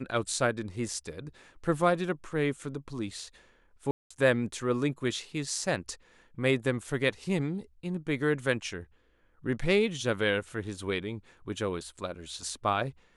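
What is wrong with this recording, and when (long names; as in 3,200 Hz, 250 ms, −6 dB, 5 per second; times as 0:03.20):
0:03.91–0:04.11: drop-out 195 ms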